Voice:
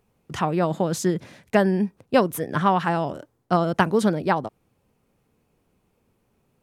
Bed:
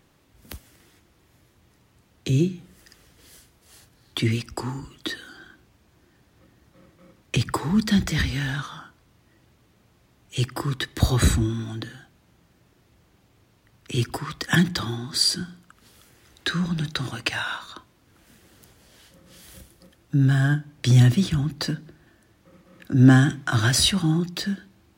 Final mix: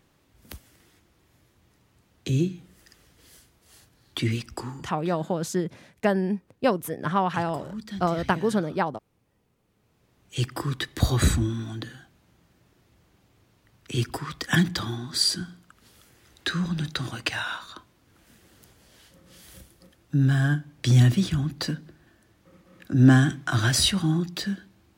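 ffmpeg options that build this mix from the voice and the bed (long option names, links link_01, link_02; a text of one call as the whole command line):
ffmpeg -i stem1.wav -i stem2.wav -filter_complex "[0:a]adelay=4500,volume=-4dB[link_01];[1:a]volume=11dB,afade=type=out:start_time=4.54:duration=0.44:silence=0.223872,afade=type=in:start_time=9.62:duration=0.81:silence=0.199526[link_02];[link_01][link_02]amix=inputs=2:normalize=0" out.wav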